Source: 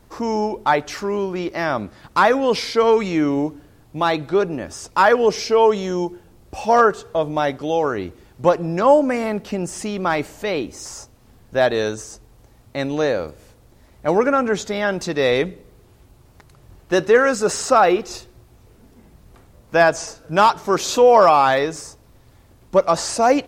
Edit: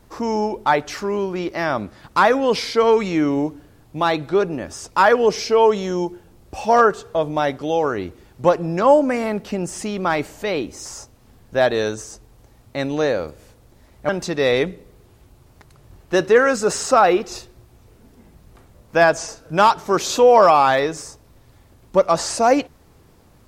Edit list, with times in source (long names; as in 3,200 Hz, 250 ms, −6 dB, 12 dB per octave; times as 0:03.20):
0:14.09–0:14.88: remove